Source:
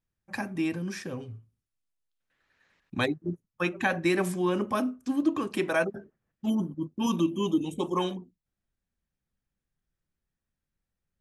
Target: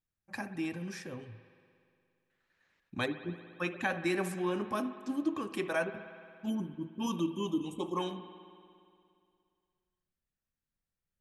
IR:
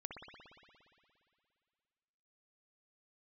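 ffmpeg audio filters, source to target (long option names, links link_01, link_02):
-filter_complex "[0:a]asplit=2[link_01][link_02];[1:a]atrim=start_sample=2205,lowshelf=frequency=350:gain=-7.5[link_03];[link_02][link_03]afir=irnorm=-1:irlink=0,volume=-2dB[link_04];[link_01][link_04]amix=inputs=2:normalize=0,volume=-8.5dB"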